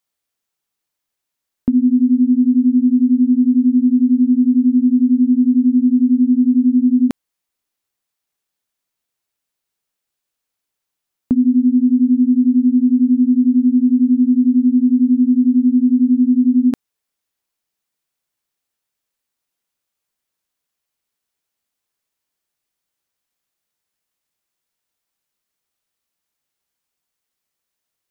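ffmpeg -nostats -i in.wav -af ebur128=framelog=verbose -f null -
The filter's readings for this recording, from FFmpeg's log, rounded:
Integrated loudness:
  I:         -13.9 LUFS
  Threshold: -24.0 LUFS
Loudness range:
  LRA:         7.5 LU
  Threshold: -35.3 LUFS
  LRA low:   -21.1 LUFS
  LRA high:  -13.6 LUFS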